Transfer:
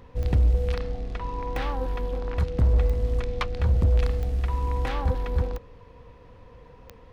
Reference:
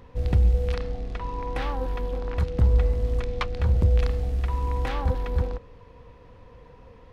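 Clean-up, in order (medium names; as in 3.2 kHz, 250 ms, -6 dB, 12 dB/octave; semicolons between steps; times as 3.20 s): clip repair -14.5 dBFS; de-click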